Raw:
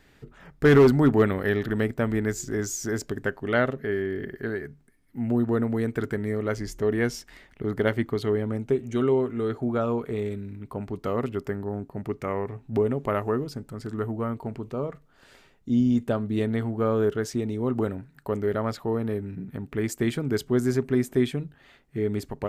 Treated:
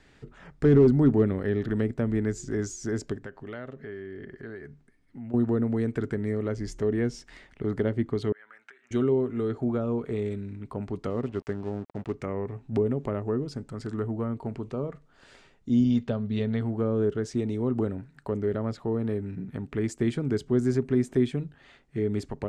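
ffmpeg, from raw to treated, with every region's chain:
ffmpeg -i in.wav -filter_complex "[0:a]asettb=1/sr,asplit=3[link_01][link_02][link_03];[link_01]atrim=end=3.164[link_04];[link_02]atrim=start=3.16:end=5.34,asetpts=PTS-STARTPTS,afade=type=in:duration=0.004:curve=qsin,afade=type=out:start_time=2.176:duration=0.004:curve=qsin,highshelf=frequency=9100:gain=-9.5,acompressor=threshold=-41dB:ratio=2.5:attack=3.2:release=140:knee=1:detection=peak[link_05];[link_03]atrim=start=5.336[link_06];[link_04][link_05]acrossfade=duration=0.004:curve1=hsin:curve2=qsin[link_07];[link_07][link_06]acrossfade=duration=0.004:curve1=qsin:curve2=hsin,asettb=1/sr,asplit=3[link_08][link_09][link_10];[link_08]atrim=end=8.324[link_11];[link_09]atrim=start=8.32:end=8.91,asetpts=PTS-STARTPTS,afade=type=in:duration=0.004:curve=qsin,afade=type=out:start_time=0.586:duration=0.004:curve=qsin,acompressor=threshold=-33dB:ratio=10:attack=3.2:release=140:knee=1:detection=peak,highpass=frequency=1600:width_type=q:width=3.7,highshelf=frequency=3400:gain=-10.5[link_12];[link_10]atrim=start=8.906[link_13];[link_11][link_12]acrossfade=duration=0.004:curve1=hsin:curve2=qsin[link_14];[link_14][link_13]acrossfade=duration=0.004:curve1=qsin:curve2=hsin,asettb=1/sr,asplit=3[link_15][link_16][link_17];[link_15]atrim=end=11.104[link_18];[link_16]atrim=start=11.1:end=12.14,asetpts=PTS-STARTPTS,afade=type=in:duration=0.004:curve=qsin,afade=type=out:start_time=1.036:duration=0.004:curve=qsin,highshelf=frequency=12000:gain=-11.5,aeval=exprs='sgn(val(0))*max(abs(val(0))-0.00596,0)':channel_layout=same[link_19];[link_17]atrim=start=12.136[link_20];[link_18][link_19]acrossfade=duration=0.004:curve1=hsin:curve2=qsin[link_21];[link_21][link_20]acrossfade=duration=0.004:curve1=qsin:curve2=hsin,asettb=1/sr,asplit=3[link_22][link_23][link_24];[link_22]atrim=end=15.844[link_25];[link_23]atrim=start=15.84:end=16.61,asetpts=PTS-STARTPTS,afade=type=in:duration=0.004:curve=qsin,afade=type=out:start_time=0.766:duration=0.004:curve=qsin,lowpass=frequency=4400:width_type=q:width=1.7,equalizer=frequency=320:width=6.3:gain=-15[link_26];[link_24]atrim=start=16.606[link_27];[link_25][link_26]acrossfade=duration=0.004:curve1=hsin:curve2=qsin[link_28];[link_28][link_27]acrossfade=duration=0.004:curve1=qsin:curve2=hsin,acrossover=split=480[link_29][link_30];[link_30]acompressor=threshold=-38dB:ratio=5[link_31];[link_29][link_31]amix=inputs=2:normalize=0,lowpass=frequency=8900:width=0.5412,lowpass=frequency=8900:width=1.3066" out.wav

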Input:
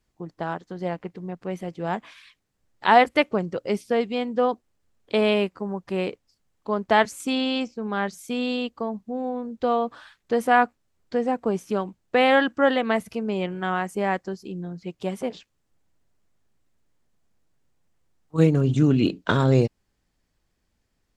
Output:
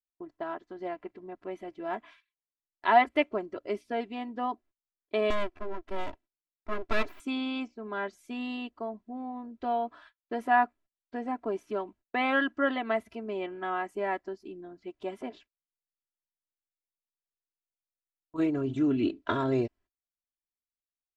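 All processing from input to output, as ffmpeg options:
ffmpeg -i in.wav -filter_complex "[0:a]asettb=1/sr,asplit=3[link_01][link_02][link_03];[link_01]atrim=end=5.304[link_04];[link_02]atrim=start=5.3:end=7.2,asetpts=PTS-STARTPTS,afade=type=in:duration=0.004:curve=qsin,afade=type=out:start_time=1.896:duration=0.004:curve=qsin,highpass=frequency=45:width=0.5412,highpass=frequency=45:width=1.3066,equalizer=frequency=140:width_type=o:width=0.78:gain=13.5,aeval=exprs='abs(val(0))':channel_layout=same[link_05];[link_03]atrim=start=7.196[link_06];[link_04][link_05]acrossfade=duration=0.004:curve1=hsin:curve2=qsin[link_07];[link_07][link_06]acrossfade=duration=0.004:curve1=qsin:curve2=hsin,agate=range=-29dB:threshold=-46dB:ratio=16:detection=peak,bass=frequency=250:gain=-4,treble=frequency=4000:gain=-13,aecho=1:1:3:0.81,volume=-8dB" out.wav

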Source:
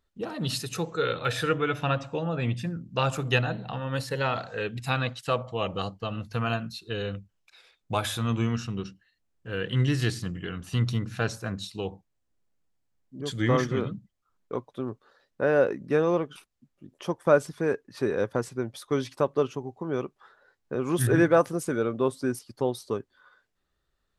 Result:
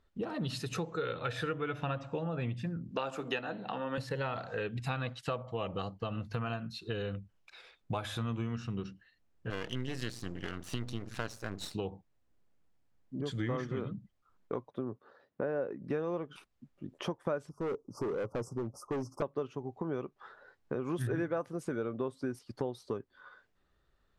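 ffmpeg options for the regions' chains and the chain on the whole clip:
ffmpeg -i in.wav -filter_complex "[0:a]asettb=1/sr,asplit=3[link_01][link_02][link_03];[link_01]atrim=end=2.914[link_04];[link_02]atrim=start=2.91:end=3.98,asetpts=PTS-STARTPTS,afade=type=in:duration=0.004:curve=qsin,afade=type=out:start_time=1.066:duration=0.004:curve=qsin,highpass=frequency=210:width=0.5412,highpass=frequency=210:width=1.3066,asplit=2[link_05][link_06];[link_06]adelay=15,volume=-14dB[link_07];[link_05][link_07]amix=inputs=2:normalize=0,atrim=end_sample=47187[link_08];[link_03]atrim=start=3.976[link_09];[link_04][link_08]acrossfade=duration=0.004:curve1=hsin:curve2=qsin[link_10];[link_10][link_09]acrossfade=duration=0.004:curve1=qsin:curve2=hsin,asettb=1/sr,asplit=3[link_11][link_12][link_13];[link_11]atrim=end=9.504[link_14];[link_12]atrim=start=9.5:end=11.75,asetpts=PTS-STARTPTS,afade=type=in:duration=0.004:curve=qsin,afade=type=out:start_time=2.246:duration=0.004:curve=qsin,aeval=exprs='max(val(0),0)':channel_layout=same,bass=frequency=250:gain=-4,treble=frequency=4000:gain=9[link_15];[link_13]atrim=start=11.746[link_16];[link_14][link_15]acrossfade=duration=0.004:curve1=hsin:curve2=qsin[link_17];[link_17][link_16]acrossfade=duration=0.004:curve1=qsin:curve2=hsin,asettb=1/sr,asplit=3[link_18][link_19][link_20];[link_18]atrim=end=14.704[link_21];[link_19]atrim=start=14.7:end=15.83,asetpts=PTS-STARTPTS,afade=type=in:duration=0.004:curve=qsin,afade=type=out:start_time=1.126:duration=0.004:curve=qsin,highpass=100,highshelf=frequency=2000:gain=-10.5[link_22];[link_20]atrim=start=15.826[link_23];[link_21][link_22]acrossfade=duration=0.004:curve1=hsin:curve2=qsin[link_24];[link_24][link_23]acrossfade=duration=0.004:curve1=qsin:curve2=hsin,asettb=1/sr,asplit=3[link_25][link_26][link_27];[link_25]atrim=end=17.494[link_28];[link_26]atrim=start=17.49:end=19.22,asetpts=PTS-STARTPTS,afade=type=in:duration=0.004:curve=qsin,afade=type=out:start_time=1.726:duration=0.004:curve=qsin,asuperstop=centerf=2600:order=20:qfactor=0.7,asoftclip=type=hard:threshold=-28.5dB[link_29];[link_27]atrim=start=19.216[link_30];[link_28][link_29]acrossfade=duration=0.004:curve1=hsin:curve2=qsin[link_31];[link_31][link_30]acrossfade=duration=0.004:curve1=qsin:curve2=hsin,lowpass=frequency=2700:poles=1,acompressor=threshold=-39dB:ratio=4,volume=4.5dB" out.wav

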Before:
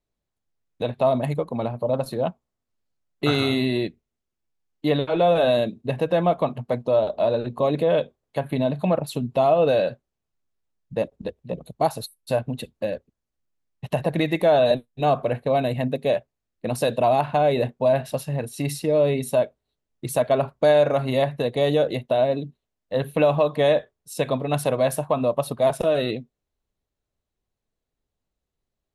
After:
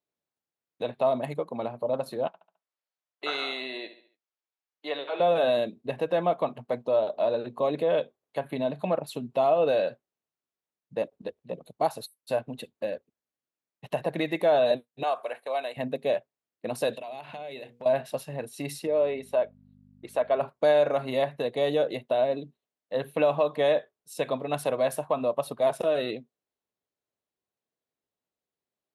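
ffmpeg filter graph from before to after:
ffmpeg -i in.wav -filter_complex "[0:a]asettb=1/sr,asplit=3[link_01][link_02][link_03];[link_01]atrim=end=2.274[link_04];[link_02]atrim=start=2.27:end=5.2,asetpts=PTS-STARTPTS,afade=type=in:duration=0.004:curve=qsin,afade=type=out:start_time=2.926:duration=0.004:curve=qsin,highpass=610,lowpass=6500,aecho=1:1:70|140|210|280:0.251|0.105|0.0443|0.0186,atrim=end_sample=129213[link_05];[link_03]atrim=start=5.196[link_06];[link_04][link_05]acrossfade=duration=0.004:curve1=hsin:curve2=qsin[link_07];[link_07][link_06]acrossfade=duration=0.004:curve1=qsin:curve2=hsin,asettb=1/sr,asplit=3[link_08][link_09][link_10];[link_08]atrim=end=15.034[link_11];[link_09]atrim=start=15.03:end=15.77,asetpts=PTS-STARTPTS,afade=type=in:duration=0.004:curve=qsin,afade=type=out:start_time=0.736:duration=0.004:curve=qsin,highpass=700,equalizer=frequency=9800:width_type=o:width=0.72:gain=13.5,acrossover=split=5900[link_12][link_13];[link_13]acompressor=threshold=-56dB:ratio=4:attack=1:release=60[link_14];[link_12][link_14]amix=inputs=2:normalize=0[link_15];[link_10]atrim=start=15.766[link_16];[link_11][link_15]acrossfade=duration=0.004:curve1=hsin:curve2=qsin[link_17];[link_17][link_16]acrossfade=duration=0.004:curve1=qsin:curve2=hsin,asettb=1/sr,asplit=3[link_18][link_19][link_20];[link_18]atrim=end=16.934[link_21];[link_19]atrim=start=16.93:end=17.86,asetpts=PTS-STARTPTS,afade=type=in:duration=0.004:curve=qsin,afade=type=out:start_time=0.926:duration=0.004:curve=qsin,acompressor=threshold=-31dB:ratio=8:attack=3.2:release=140:knee=1:detection=peak,highshelf=frequency=1800:width_type=q:width=1.5:gain=6,bandreject=frequency=60:width_type=h:width=6,bandreject=frequency=120:width_type=h:width=6,bandreject=frequency=180:width_type=h:width=6,bandreject=frequency=240:width_type=h:width=6,bandreject=frequency=300:width_type=h:width=6,bandreject=frequency=360:width_type=h:width=6,bandreject=frequency=420:width_type=h:width=6,bandreject=frequency=480:width_type=h:width=6[link_22];[link_20]atrim=start=17.856[link_23];[link_21][link_22]acrossfade=duration=0.004:curve1=hsin:curve2=qsin[link_24];[link_24][link_23]acrossfade=duration=0.004:curve1=qsin:curve2=hsin,asettb=1/sr,asplit=3[link_25][link_26][link_27];[link_25]atrim=end=18.874[link_28];[link_26]atrim=start=18.87:end=20.41,asetpts=PTS-STARTPTS,afade=type=in:duration=0.004:curve=qsin,afade=type=out:start_time=1.536:duration=0.004:curve=qsin,bass=frequency=250:gain=-12,treble=frequency=4000:gain=-12,aeval=exprs='val(0)+0.0112*(sin(2*PI*50*n/s)+sin(2*PI*2*50*n/s)/2+sin(2*PI*3*50*n/s)/3+sin(2*PI*4*50*n/s)/4+sin(2*PI*5*50*n/s)/5)':channel_layout=same[link_29];[link_27]atrim=start=20.406[link_30];[link_28][link_29]acrossfade=duration=0.004:curve1=hsin:curve2=qsin[link_31];[link_31][link_30]acrossfade=duration=0.004:curve1=qsin:curve2=hsin,highpass=130,bass=frequency=250:gain=-7,treble=frequency=4000:gain=-3,volume=-4dB" out.wav

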